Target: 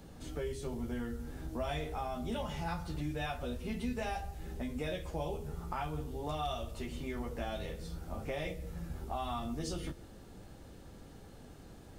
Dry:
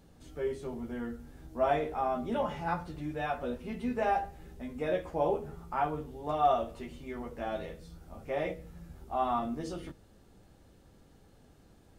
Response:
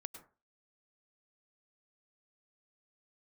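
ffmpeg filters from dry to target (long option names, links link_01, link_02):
-filter_complex "[0:a]asplit=2[link_01][link_02];[1:a]atrim=start_sample=2205,adelay=32[link_03];[link_02][link_03]afir=irnorm=-1:irlink=0,volume=-12dB[link_04];[link_01][link_04]amix=inputs=2:normalize=0,acrossover=split=130|3000[link_05][link_06][link_07];[link_06]acompressor=threshold=-46dB:ratio=5[link_08];[link_05][link_08][link_07]amix=inputs=3:normalize=0,volume=7dB"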